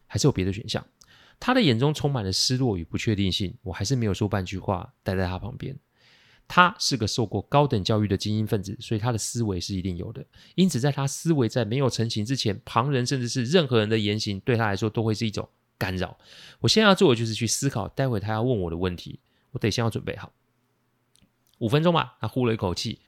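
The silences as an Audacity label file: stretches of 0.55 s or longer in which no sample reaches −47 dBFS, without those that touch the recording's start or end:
20.280000	21.160000	silence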